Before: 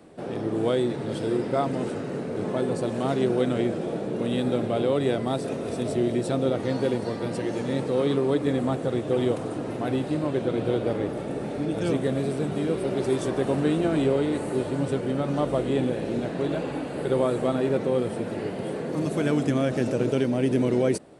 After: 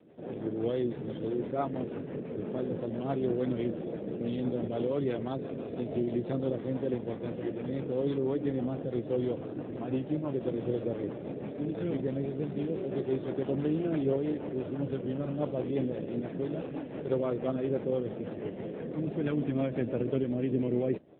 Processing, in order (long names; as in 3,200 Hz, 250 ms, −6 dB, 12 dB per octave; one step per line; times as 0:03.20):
rotating-speaker cabinet horn 6 Hz
level −4.5 dB
AMR narrowband 7.4 kbit/s 8,000 Hz